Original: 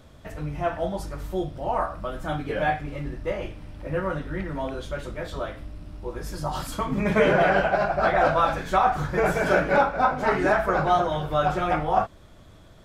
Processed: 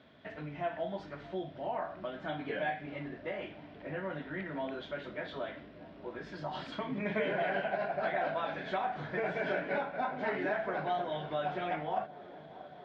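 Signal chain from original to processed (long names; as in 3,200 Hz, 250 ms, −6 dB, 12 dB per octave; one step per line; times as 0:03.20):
dynamic equaliser 1,300 Hz, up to −6 dB, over −39 dBFS, Q 2.6
downward compressor 2.5 to 1, threshold −27 dBFS, peak gain reduction 8.5 dB
loudspeaker in its box 280–3,400 Hz, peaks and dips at 340 Hz −6 dB, 510 Hz −9 dB, 840 Hz −7 dB, 1,200 Hz −9 dB, 2,600 Hz −4 dB
delay with a low-pass on its return 629 ms, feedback 80%, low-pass 1,100 Hz, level −18 dB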